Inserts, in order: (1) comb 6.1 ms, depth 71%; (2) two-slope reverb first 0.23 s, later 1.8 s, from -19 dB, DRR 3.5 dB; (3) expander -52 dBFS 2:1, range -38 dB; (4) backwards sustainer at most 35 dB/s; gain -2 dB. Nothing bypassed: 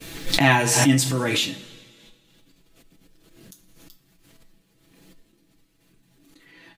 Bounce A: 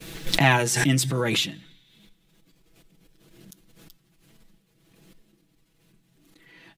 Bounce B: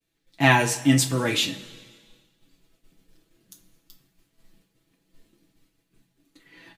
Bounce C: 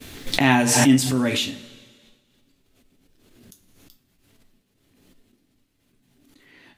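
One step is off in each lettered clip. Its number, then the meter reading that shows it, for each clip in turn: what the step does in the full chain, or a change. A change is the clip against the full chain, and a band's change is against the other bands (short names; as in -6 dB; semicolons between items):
2, 250 Hz band -2.5 dB; 4, 8 kHz band -3.0 dB; 1, 250 Hz band +4.5 dB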